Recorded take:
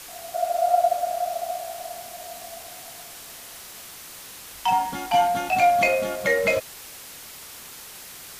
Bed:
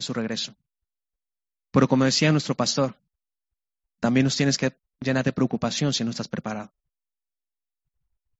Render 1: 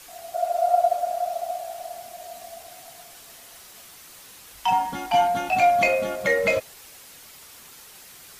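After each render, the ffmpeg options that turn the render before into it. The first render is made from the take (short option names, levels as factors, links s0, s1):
-af "afftdn=nr=6:nf=-42"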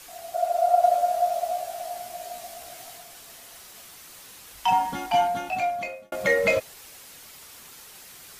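-filter_complex "[0:a]asettb=1/sr,asplit=3[s0][s1][s2];[s0]atrim=end=0.814[s3];[s1]atrim=start=0.81:end=2.98,asetpts=PTS-STARTPTS,afade=t=in:d=0.004:c=qsin,afade=t=out:st=2.166:d=0.004:c=qsin,asplit=2[s4][s5];[s5]adelay=17,volume=0.794[s6];[s4][s6]amix=inputs=2:normalize=0,atrim=end_sample=95697[s7];[s2]atrim=start=2.976[s8];[s3][s7]acrossfade=d=0.004:c1=hsin:c2=qsin[s9];[s9][s8]acrossfade=d=0.004:c1=qsin:c2=hsin,asplit=2[s10][s11];[s10]atrim=end=6.12,asetpts=PTS-STARTPTS,afade=t=out:st=4.95:d=1.17[s12];[s11]atrim=start=6.12,asetpts=PTS-STARTPTS,afade=t=in:d=0.004:c=hsin[s13];[s12][s13]concat=n=2:v=0:a=1"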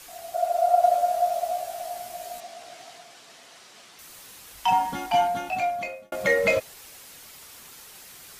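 -filter_complex "[0:a]asettb=1/sr,asplit=3[s0][s1][s2];[s0]atrim=end=2.404[s3];[s1]atrim=start=2.4:end=3.99,asetpts=PTS-STARTPTS,afade=t=in:d=0.004:c=qsin,afade=t=out:st=1.586:d=0.004:c=qsin,highpass=160,lowpass=6000[s4];[s2]atrim=start=3.986[s5];[s3][s4]acrossfade=d=0.004:c1=hsin:c2=qsin[s6];[s6][s5]acrossfade=d=0.004:c1=qsin:c2=hsin"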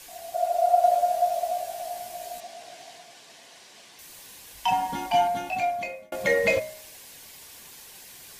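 -af "bandreject=f=1300:w=5.2,bandreject=f=62.42:t=h:w=4,bandreject=f=124.84:t=h:w=4,bandreject=f=187.26:t=h:w=4,bandreject=f=249.68:t=h:w=4,bandreject=f=312.1:t=h:w=4,bandreject=f=374.52:t=h:w=4,bandreject=f=436.94:t=h:w=4,bandreject=f=499.36:t=h:w=4,bandreject=f=561.78:t=h:w=4,bandreject=f=624.2:t=h:w=4,bandreject=f=686.62:t=h:w=4,bandreject=f=749.04:t=h:w=4,bandreject=f=811.46:t=h:w=4,bandreject=f=873.88:t=h:w=4,bandreject=f=936.3:t=h:w=4,bandreject=f=998.72:t=h:w=4,bandreject=f=1061.14:t=h:w=4,bandreject=f=1123.56:t=h:w=4,bandreject=f=1185.98:t=h:w=4,bandreject=f=1248.4:t=h:w=4,bandreject=f=1310.82:t=h:w=4,bandreject=f=1373.24:t=h:w=4,bandreject=f=1435.66:t=h:w=4,bandreject=f=1498.08:t=h:w=4,bandreject=f=1560.5:t=h:w=4,bandreject=f=1622.92:t=h:w=4,bandreject=f=1685.34:t=h:w=4,bandreject=f=1747.76:t=h:w=4,bandreject=f=1810.18:t=h:w=4,bandreject=f=1872.6:t=h:w=4,bandreject=f=1935.02:t=h:w=4,bandreject=f=1997.44:t=h:w=4,bandreject=f=2059.86:t=h:w=4,bandreject=f=2122.28:t=h:w=4,bandreject=f=2184.7:t=h:w=4,bandreject=f=2247.12:t=h:w=4,bandreject=f=2309.54:t=h:w=4,bandreject=f=2371.96:t=h:w=4"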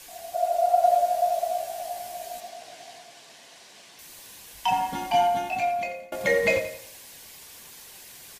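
-af "aecho=1:1:87|174|261|348:0.282|0.116|0.0474|0.0194"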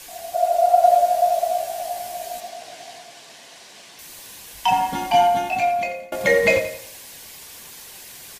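-af "volume=1.88"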